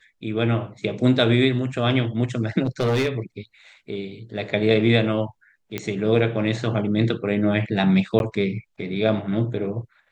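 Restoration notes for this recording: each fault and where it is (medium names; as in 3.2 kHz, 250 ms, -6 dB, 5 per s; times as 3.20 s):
2.63–3.09 s: clipped -17 dBFS
5.78 s: pop -12 dBFS
8.19–8.20 s: dropout 11 ms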